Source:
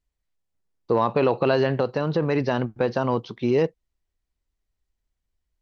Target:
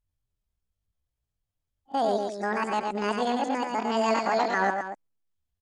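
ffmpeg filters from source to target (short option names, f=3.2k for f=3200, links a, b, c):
-af "areverse,aecho=1:1:105|239.1:0.631|0.316,asetrate=74167,aresample=44100,atempo=0.594604,volume=-5.5dB"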